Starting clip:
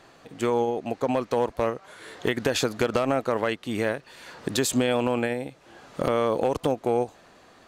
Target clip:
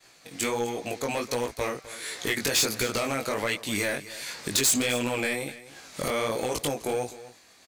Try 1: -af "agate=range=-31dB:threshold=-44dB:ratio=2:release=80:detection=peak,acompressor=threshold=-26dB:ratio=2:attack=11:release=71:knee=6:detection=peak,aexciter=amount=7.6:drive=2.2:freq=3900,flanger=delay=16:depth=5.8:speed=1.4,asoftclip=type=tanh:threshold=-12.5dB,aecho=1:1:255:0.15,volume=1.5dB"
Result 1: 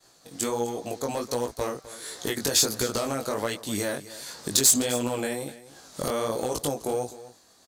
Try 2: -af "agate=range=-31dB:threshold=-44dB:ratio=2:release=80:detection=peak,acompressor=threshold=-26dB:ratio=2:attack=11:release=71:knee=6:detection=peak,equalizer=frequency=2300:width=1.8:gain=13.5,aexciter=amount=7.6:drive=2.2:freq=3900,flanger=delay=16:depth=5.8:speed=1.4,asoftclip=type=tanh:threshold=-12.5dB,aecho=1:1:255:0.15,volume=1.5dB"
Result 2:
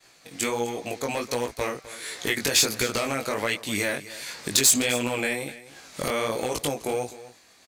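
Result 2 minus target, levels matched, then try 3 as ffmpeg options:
soft clipping: distortion −7 dB
-af "agate=range=-31dB:threshold=-44dB:ratio=2:release=80:detection=peak,acompressor=threshold=-26dB:ratio=2:attack=11:release=71:knee=6:detection=peak,equalizer=frequency=2300:width=1.8:gain=13.5,aexciter=amount=7.6:drive=2.2:freq=3900,flanger=delay=16:depth=5.8:speed=1.4,asoftclip=type=tanh:threshold=-20dB,aecho=1:1:255:0.15,volume=1.5dB"

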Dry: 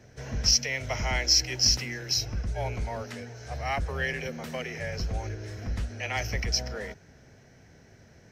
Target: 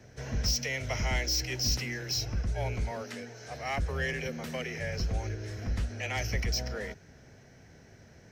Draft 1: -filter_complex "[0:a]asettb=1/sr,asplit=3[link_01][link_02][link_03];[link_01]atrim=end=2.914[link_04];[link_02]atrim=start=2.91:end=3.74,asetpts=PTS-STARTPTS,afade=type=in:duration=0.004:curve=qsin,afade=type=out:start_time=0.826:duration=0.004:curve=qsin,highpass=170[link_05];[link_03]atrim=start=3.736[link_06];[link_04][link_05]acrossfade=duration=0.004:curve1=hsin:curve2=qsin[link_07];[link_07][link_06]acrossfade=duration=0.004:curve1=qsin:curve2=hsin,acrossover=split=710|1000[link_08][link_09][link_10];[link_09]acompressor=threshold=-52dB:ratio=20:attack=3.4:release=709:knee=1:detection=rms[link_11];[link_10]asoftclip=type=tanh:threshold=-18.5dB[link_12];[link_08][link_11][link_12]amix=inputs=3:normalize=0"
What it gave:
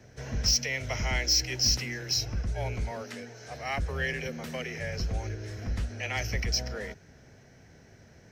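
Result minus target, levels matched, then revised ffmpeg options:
soft clipping: distortion −8 dB
-filter_complex "[0:a]asettb=1/sr,asplit=3[link_01][link_02][link_03];[link_01]atrim=end=2.914[link_04];[link_02]atrim=start=2.91:end=3.74,asetpts=PTS-STARTPTS,afade=type=in:duration=0.004:curve=qsin,afade=type=out:start_time=0.826:duration=0.004:curve=qsin,highpass=170[link_05];[link_03]atrim=start=3.736[link_06];[link_04][link_05]acrossfade=duration=0.004:curve1=hsin:curve2=qsin[link_07];[link_07][link_06]acrossfade=duration=0.004:curve1=qsin:curve2=hsin,acrossover=split=710|1000[link_08][link_09][link_10];[link_09]acompressor=threshold=-52dB:ratio=20:attack=3.4:release=709:knee=1:detection=rms[link_11];[link_10]asoftclip=type=tanh:threshold=-27.5dB[link_12];[link_08][link_11][link_12]amix=inputs=3:normalize=0"

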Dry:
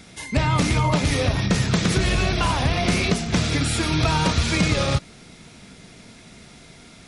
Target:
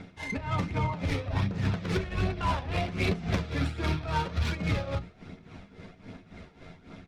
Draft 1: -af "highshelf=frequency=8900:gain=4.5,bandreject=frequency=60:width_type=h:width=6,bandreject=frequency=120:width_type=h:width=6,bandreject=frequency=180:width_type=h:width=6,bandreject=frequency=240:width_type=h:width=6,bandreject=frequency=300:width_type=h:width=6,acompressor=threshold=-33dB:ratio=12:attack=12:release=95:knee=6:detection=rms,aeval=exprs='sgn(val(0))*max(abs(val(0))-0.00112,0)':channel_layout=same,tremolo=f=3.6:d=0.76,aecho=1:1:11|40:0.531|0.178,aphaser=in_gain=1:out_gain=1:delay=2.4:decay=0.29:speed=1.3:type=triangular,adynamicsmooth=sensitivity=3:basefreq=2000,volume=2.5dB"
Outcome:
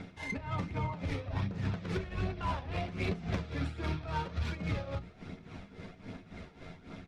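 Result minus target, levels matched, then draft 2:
downward compressor: peak gain reduction +5.5 dB
-af "highshelf=frequency=8900:gain=4.5,bandreject=frequency=60:width_type=h:width=6,bandreject=frequency=120:width_type=h:width=6,bandreject=frequency=180:width_type=h:width=6,bandreject=frequency=240:width_type=h:width=6,bandreject=frequency=300:width_type=h:width=6,acompressor=threshold=-27dB:ratio=12:attack=12:release=95:knee=6:detection=rms,aeval=exprs='sgn(val(0))*max(abs(val(0))-0.00112,0)':channel_layout=same,tremolo=f=3.6:d=0.76,aecho=1:1:11|40:0.531|0.178,aphaser=in_gain=1:out_gain=1:delay=2.4:decay=0.29:speed=1.3:type=triangular,adynamicsmooth=sensitivity=3:basefreq=2000,volume=2.5dB"

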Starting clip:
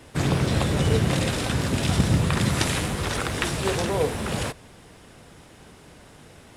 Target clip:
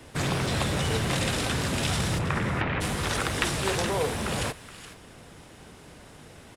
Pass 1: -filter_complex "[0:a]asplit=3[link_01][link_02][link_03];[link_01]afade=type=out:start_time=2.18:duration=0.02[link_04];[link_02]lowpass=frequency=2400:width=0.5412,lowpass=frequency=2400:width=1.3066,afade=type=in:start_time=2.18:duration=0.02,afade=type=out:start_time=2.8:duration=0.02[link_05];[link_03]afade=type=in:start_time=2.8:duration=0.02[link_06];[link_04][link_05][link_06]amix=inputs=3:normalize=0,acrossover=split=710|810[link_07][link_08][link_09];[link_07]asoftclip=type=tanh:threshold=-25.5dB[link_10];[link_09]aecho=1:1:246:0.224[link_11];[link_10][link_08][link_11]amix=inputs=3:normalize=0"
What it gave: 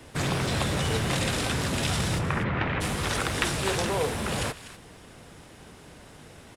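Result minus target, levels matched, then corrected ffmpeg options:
echo 176 ms early
-filter_complex "[0:a]asplit=3[link_01][link_02][link_03];[link_01]afade=type=out:start_time=2.18:duration=0.02[link_04];[link_02]lowpass=frequency=2400:width=0.5412,lowpass=frequency=2400:width=1.3066,afade=type=in:start_time=2.18:duration=0.02,afade=type=out:start_time=2.8:duration=0.02[link_05];[link_03]afade=type=in:start_time=2.8:duration=0.02[link_06];[link_04][link_05][link_06]amix=inputs=3:normalize=0,acrossover=split=710|810[link_07][link_08][link_09];[link_07]asoftclip=type=tanh:threshold=-25.5dB[link_10];[link_09]aecho=1:1:422:0.224[link_11];[link_10][link_08][link_11]amix=inputs=3:normalize=0"

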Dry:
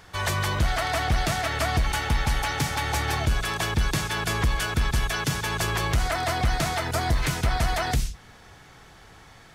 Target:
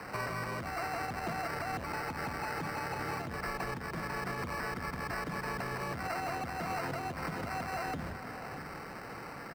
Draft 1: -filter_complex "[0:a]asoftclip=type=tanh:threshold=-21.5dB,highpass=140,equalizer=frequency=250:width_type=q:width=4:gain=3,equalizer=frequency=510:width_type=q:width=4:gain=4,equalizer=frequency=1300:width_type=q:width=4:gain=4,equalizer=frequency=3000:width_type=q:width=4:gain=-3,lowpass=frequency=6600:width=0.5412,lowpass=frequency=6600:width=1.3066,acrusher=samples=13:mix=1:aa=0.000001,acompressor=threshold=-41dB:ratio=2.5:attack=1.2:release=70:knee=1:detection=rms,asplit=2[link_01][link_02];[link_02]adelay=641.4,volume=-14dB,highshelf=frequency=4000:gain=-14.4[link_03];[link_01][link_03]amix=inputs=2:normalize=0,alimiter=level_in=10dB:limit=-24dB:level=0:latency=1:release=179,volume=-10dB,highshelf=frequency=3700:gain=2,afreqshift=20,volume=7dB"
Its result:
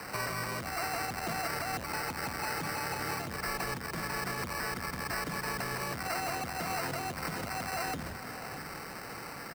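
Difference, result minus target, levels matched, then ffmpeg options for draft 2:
8,000 Hz band +7.5 dB; soft clipping: distortion +10 dB
-filter_complex "[0:a]asoftclip=type=tanh:threshold=-15dB,highpass=140,equalizer=frequency=250:width_type=q:width=4:gain=3,equalizer=frequency=510:width_type=q:width=4:gain=4,equalizer=frequency=1300:width_type=q:width=4:gain=4,equalizer=frequency=3000:width_type=q:width=4:gain=-3,lowpass=frequency=6600:width=0.5412,lowpass=frequency=6600:width=1.3066,acrusher=samples=13:mix=1:aa=0.000001,acompressor=threshold=-41dB:ratio=2.5:attack=1.2:release=70:knee=1:detection=rms,asplit=2[link_01][link_02];[link_02]adelay=641.4,volume=-14dB,highshelf=frequency=4000:gain=-14.4[link_03];[link_01][link_03]amix=inputs=2:normalize=0,alimiter=level_in=10dB:limit=-24dB:level=0:latency=1:release=179,volume=-10dB,highshelf=frequency=3700:gain=-10,afreqshift=20,volume=7dB"

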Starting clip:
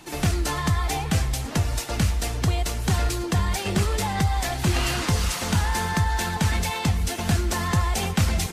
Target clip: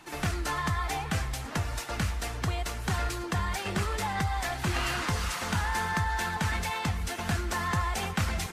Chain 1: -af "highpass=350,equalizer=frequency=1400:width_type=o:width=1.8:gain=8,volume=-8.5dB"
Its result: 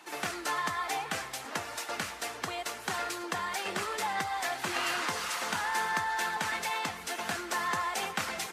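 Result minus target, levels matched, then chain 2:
250 Hz band −6.0 dB
-af "equalizer=frequency=1400:width_type=o:width=1.8:gain=8,volume=-8.5dB"

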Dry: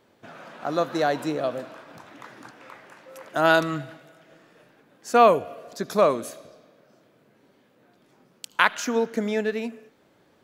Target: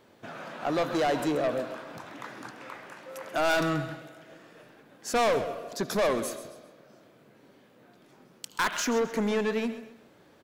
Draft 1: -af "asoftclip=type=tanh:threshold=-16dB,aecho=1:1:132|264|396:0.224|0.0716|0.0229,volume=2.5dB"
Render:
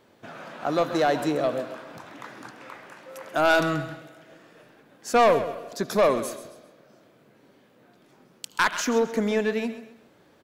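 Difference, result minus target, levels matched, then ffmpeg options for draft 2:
soft clipping: distortion −5 dB
-af "asoftclip=type=tanh:threshold=-24.5dB,aecho=1:1:132|264|396:0.224|0.0716|0.0229,volume=2.5dB"

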